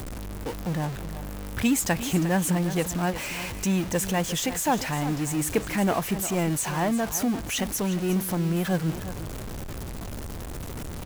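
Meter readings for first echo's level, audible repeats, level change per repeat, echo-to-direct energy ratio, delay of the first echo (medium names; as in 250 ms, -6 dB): -12.5 dB, 1, no regular repeats, -12.5 dB, 354 ms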